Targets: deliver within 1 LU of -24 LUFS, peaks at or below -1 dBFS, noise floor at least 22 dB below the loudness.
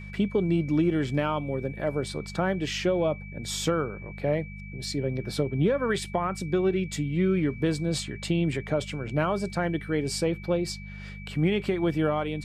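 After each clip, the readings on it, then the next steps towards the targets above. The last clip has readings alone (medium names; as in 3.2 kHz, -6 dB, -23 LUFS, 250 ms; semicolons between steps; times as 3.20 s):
hum 50 Hz; highest harmonic 200 Hz; hum level -38 dBFS; steady tone 2.3 kHz; tone level -45 dBFS; loudness -28.0 LUFS; peak level -11.5 dBFS; loudness target -24.0 LUFS
-> de-hum 50 Hz, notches 4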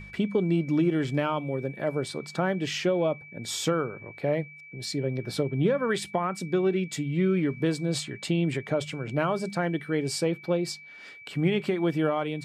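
hum not found; steady tone 2.3 kHz; tone level -45 dBFS
-> band-stop 2.3 kHz, Q 30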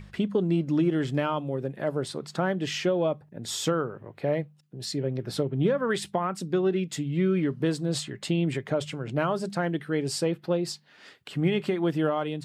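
steady tone not found; loudness -28.0 LUFS; peak level -12.0 dBFS; loudness target -24.0 LUFS
-> trim +4 dB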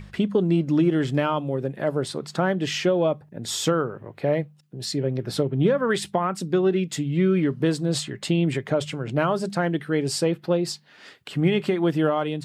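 loudness -24.0 LUFS; peak level -8.0 dBFS; noise floor -53 dBFS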